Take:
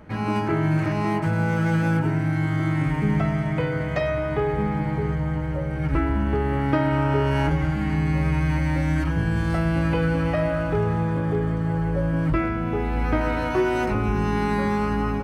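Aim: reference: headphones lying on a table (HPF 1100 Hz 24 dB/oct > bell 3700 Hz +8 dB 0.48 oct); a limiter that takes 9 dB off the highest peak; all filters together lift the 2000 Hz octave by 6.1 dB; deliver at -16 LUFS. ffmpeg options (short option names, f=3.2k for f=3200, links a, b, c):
-af "equalizer=f=2k:t=o:g=7.5,alimiter=limit=-15dB:level=0:latency=1,highpass=f=1.1k:w=0.5412,highpass=f=1.1k:w=1.3066,equalizer=f=3.7k:t=o:w=0.48:g=8,volume=14dB"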